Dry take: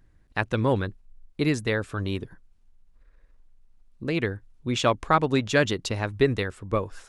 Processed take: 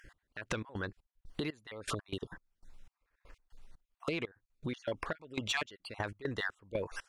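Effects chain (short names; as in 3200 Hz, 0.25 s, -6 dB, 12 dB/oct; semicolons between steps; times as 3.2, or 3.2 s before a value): random spectral dropouts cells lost 29%; limiter -20.5 dBFS, peak gain reduction 11.5 dB; step gate "x...x.xx..x" 120 bpm -24 dB; compressor 8:1, threshold -44 dBFS, peak gain reduction 18.5 dB; overdrive pedal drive 12 dB, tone 5500 Hz, clips at -29 dBFS; gain +9 dB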